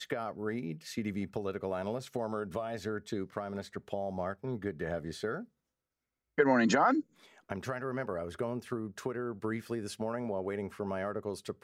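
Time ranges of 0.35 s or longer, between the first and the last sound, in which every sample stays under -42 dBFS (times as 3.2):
5.43–6.38
7.01–7.5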